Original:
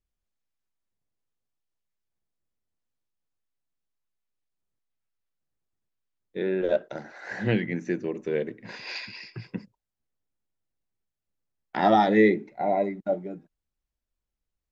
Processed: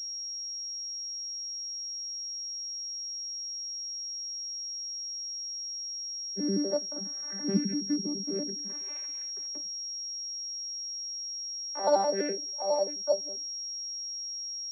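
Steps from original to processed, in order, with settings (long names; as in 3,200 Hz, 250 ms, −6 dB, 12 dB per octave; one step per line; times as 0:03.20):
vocoder with an arpeggio as carrier bare fifth, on G3, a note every 83 ms
high-pass filter sweep 190 Hz → 560 Hz, 0:08.43–0:09.15
switching amplifier with a slow clock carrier 5,600 Hz
level −6.5 dB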